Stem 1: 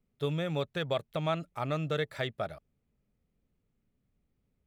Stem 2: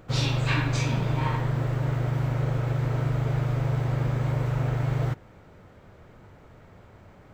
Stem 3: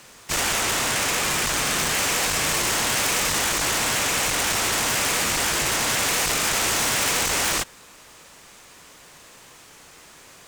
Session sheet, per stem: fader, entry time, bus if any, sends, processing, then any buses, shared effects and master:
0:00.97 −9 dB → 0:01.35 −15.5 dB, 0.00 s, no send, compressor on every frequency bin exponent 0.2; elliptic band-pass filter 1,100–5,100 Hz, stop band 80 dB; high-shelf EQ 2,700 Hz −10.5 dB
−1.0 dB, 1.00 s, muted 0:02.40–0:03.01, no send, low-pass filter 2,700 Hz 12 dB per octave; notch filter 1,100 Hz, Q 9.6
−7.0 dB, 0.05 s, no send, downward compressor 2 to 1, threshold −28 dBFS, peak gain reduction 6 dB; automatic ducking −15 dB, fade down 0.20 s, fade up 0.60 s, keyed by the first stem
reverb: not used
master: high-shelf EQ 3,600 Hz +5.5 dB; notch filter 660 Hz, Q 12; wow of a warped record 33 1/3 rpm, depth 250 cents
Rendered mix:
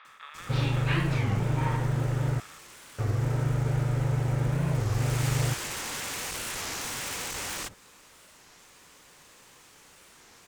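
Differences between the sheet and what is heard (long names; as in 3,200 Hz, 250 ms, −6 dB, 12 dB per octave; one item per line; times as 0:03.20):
stem 2: entry 1.00 s → 0.40 s
master: missing high-shelf EQ 3,600 Hz +5.5 dB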